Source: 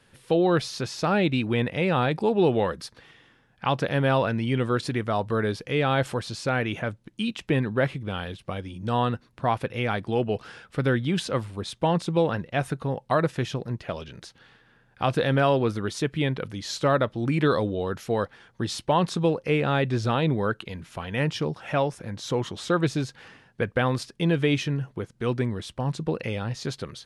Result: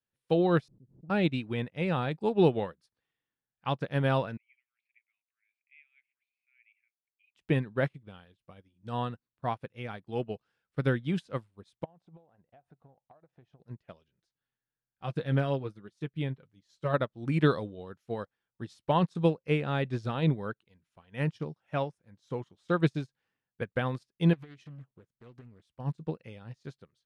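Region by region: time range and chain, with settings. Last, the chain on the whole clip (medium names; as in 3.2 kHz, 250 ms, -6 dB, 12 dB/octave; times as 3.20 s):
0.68–1.10 s: four-pole ladder low-pass 320 Hz, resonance 25% + swell ahead of each attack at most 33 dB/s
4.37–7.35 s: Butterworth band-pass 2.3 kHz, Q 5.2 + tilt EQ +2.5 dB/octave
11.84–13.60 s: low-pass 1.5 kHz 6 dB/octave + peaking EQ 730 Hz +12.5 dB 0.52 oct + compression 16:1, threshold -30 dBFS
14.10–16.94 s: bass shelf 160 Hz +4.5 dB + flange 1.1 Hz, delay 5.1 ms, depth 2.7 ms, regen -36%
24.33–25.76 s: compression 20:1, threshold -27 dBFS + loudspeaker Doppler distortion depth 0.48 ms
whole clip: dynamic bell 160 Hz, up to +4 dB, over -38 dBFS, Q 1.7; upward expansion 2.5:1, over -39 dBFS; trim -1.5 dB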